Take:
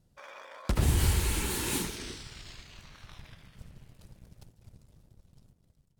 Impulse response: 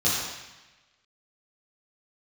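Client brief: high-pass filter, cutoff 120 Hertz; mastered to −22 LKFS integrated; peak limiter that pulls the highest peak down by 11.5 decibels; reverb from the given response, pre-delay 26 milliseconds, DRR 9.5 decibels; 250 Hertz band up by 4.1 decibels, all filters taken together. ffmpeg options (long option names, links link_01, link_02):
-filter_complex "[0:a]highpass=120,equalizer=frequency=250:width_type=o:gain=6,alimiter=level_in=1.5dB:limit=-24dB:level=0:latency=1,volume=-1.5dB,asplit=2[link_01][link_02];[1:a]atrim=start_sample=2205,adelay=26[link_03];[link_02][link_03]afir=irnorm=-1:irlink=0,volume=-23dB[link_04];[link_01][link_04]amix=inputs=2:normalize=0,volume=14.5dB"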